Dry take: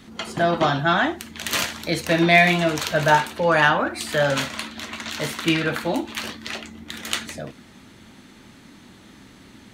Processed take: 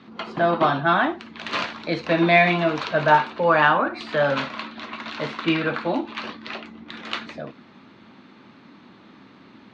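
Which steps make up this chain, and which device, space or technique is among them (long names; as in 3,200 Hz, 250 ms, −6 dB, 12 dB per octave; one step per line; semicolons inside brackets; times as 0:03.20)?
kitchen radio (loudspeaker in its box 160–3,900 Hz, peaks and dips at 1,100 Hz +5 dB, 1,900 Hz −4 dB, 3,200 Hz −5 dB)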